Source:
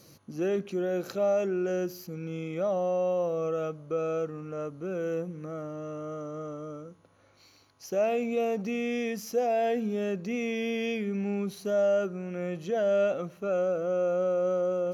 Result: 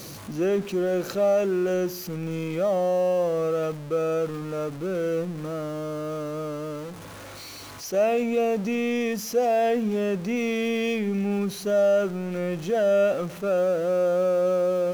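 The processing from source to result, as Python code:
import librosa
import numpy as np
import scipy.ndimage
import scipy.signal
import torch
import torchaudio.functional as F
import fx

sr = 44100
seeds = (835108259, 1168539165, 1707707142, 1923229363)

y = x + 0.5 * 10.0 ** (-40.0 / 20.0) * np.sign(x)
y = fx.attack_slew(y, sr, db_per_s=380.0)
y = y * librosa.db_to_amplitude(4.0)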